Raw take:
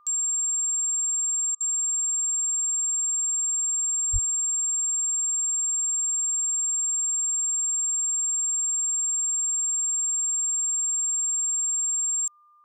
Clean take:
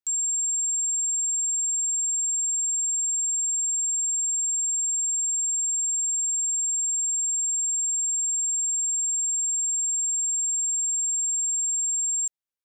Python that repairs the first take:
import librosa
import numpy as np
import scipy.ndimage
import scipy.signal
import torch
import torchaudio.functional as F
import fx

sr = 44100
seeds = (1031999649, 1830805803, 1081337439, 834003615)

y = fx.notch(x, sr, hz=1200.0, q=30.0)
y = fx.highpass(y, sr, hz=140.0, slope=24, at=(4.12, 4.24), fade=0.02)
y = fx.fix_interpolate(y, sr, at_s=(1.55,), length_ms=54.0)